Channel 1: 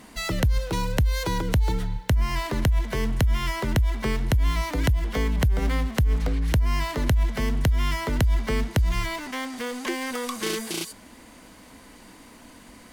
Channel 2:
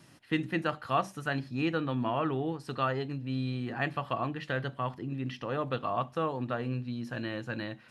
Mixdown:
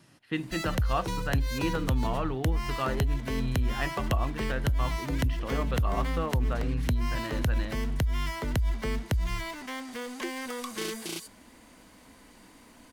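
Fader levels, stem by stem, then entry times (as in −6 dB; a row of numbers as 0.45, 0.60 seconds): −6.0, −1.5 decibels; 0.35, 0.00 seconds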